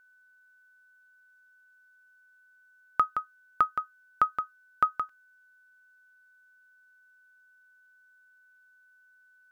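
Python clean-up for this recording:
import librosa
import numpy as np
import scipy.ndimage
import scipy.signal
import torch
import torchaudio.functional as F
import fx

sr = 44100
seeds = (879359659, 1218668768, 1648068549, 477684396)

y = fx.notch(x, sr, hz=1500.0, q=30.0)
y = fx.fix_interpolate(y, sr, at_s=(5.09,), length_ms=3.8)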